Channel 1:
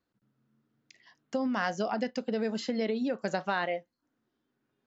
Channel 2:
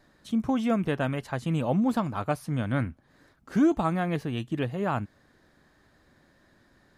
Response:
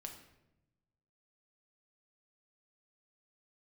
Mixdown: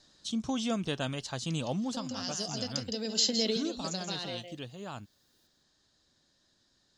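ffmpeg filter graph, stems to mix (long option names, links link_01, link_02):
-filter_complex "[0:a]acrossover=split=460|3000[link_01][link_02][link_03];[link_02]acompressor=threshold=-37dB:ratio=6[link_04];[link_01][link_04][link_03]amix=inputs=3:normalize=0,adelay=600,volume=2.5dB,asplit=2[link_05][link_06];[link_06]volume=-15.5dB[link_07];[1:a]lowpass=frequency=6800:width=0.5412,lowpass=frequency=6800:width=1.3066,volume=-6.5dB,afade=type=out:start_time=1.61:duration=0.49:silence=0.421697,asplit=2[link_08][link_09];[link_09]apad=whole_len=241147[link_10];[link_05][link_10]sidechaincompress=threshold=-45dB:ratio=8:attack=43:release=1260[link_11];[link_07]aecho=0:1:163:1[link_12];[link_11][link_08][link_12]amix=inputs=3:normalize=0,aexciter=amount=5.9:drive=7.5:freq=3100"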